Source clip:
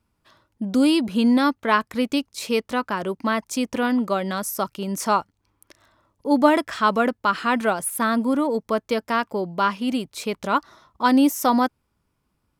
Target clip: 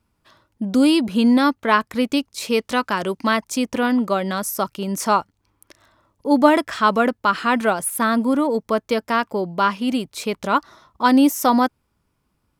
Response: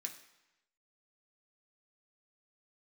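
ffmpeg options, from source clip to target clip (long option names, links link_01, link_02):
-filter_complex "[0:a]asettb=1/sr,asplit=3[link_01][link_02][link_03];[link_01]atrim=end=2.604[link_04];[link_02]atrim=start=2.6:end=3.37,asetpts=PTS-STARTPTS,afade=type=in:duration=0.004:curve=qsin,afade=type=out:start_time=0.766:duration=0.004:curve=qsin,equalizer=frequency=5900:width=0.37:gain=6.5[link_05];[link_03]atrim=start=3.366[link_06];[link_04][link_05]acrossfade=duration=0.004:curve1=hsin:curve2=qsin[link_07];[link_07][link_06]acrossfade=duration=0.004:curve1=qsin:curve2=hsin,volume=2.5dB"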